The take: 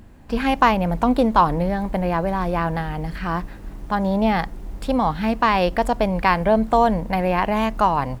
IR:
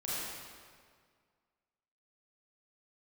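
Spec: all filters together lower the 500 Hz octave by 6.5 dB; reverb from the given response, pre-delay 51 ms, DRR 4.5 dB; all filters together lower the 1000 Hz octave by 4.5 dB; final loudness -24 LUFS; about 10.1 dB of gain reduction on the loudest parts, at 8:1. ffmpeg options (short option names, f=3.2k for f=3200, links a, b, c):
-filter_complex "[0:a]equalizer=f=500:t=o:g=-7.5,equalizer=f=1k:t=o:g=-3,acompressor=threshold=-24dB:ratio=8,asplit=2[a][b];[1:a]atrim=start_sample=2205,adelay=51[c];[b][c]afir=irnorm=-1:irlink=0,volume=-9dB[d];[a][d]amix=inputs=2:normalize=0,volume=4.5dB"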